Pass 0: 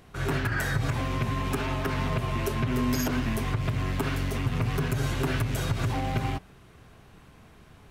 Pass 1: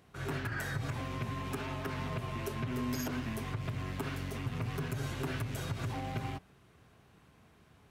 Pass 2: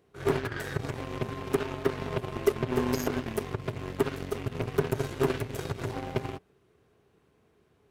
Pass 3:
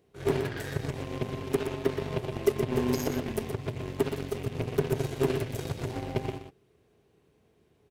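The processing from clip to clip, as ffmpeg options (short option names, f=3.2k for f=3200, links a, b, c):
-af "highpass=65,volume=-8.5dB"
-af "equalizer=f=410:t=o:w=0.72:g=12,aeval=exprs='0.141*(cos(1*acos(clip(val(0)/0.141,-1,1)))-cos(1*PI/2))+0.0158*(cos(7*acos(clip(val(0)/0.141,-1,1)))-cos(7*PI/2))':c=same,volume=6dB"
-filter_complex "[0:a]equalizer=f=1.3k:w=1.5:g=-6.5,asplit=2[a][b];[b]aecho=0:1:122:0.422[c];[a][c]amix=inputs=2:normalize=0"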